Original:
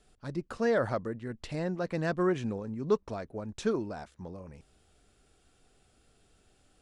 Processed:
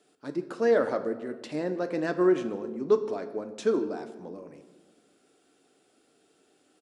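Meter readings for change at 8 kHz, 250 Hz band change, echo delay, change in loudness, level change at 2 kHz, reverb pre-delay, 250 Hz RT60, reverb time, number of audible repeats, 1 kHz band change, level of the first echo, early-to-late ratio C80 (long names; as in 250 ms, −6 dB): can't be measured, +3.5 dB, 155 ms, +4.0 dB, +1.0 dB, 7 ms, 2.0 s, 1.3 s, 1, +1.5 dB, −21.5 dB, 13.0 dB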